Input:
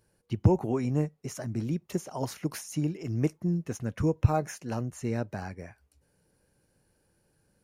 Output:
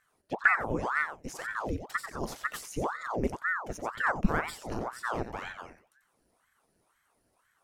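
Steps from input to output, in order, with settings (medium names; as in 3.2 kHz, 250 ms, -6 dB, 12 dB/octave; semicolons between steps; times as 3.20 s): thinning echo 90 ms, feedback 15%, high-pass 180 Hz, level -8.5 dB; ring modulator with a swept carrier 880 Hz, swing 90%, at 2 Hz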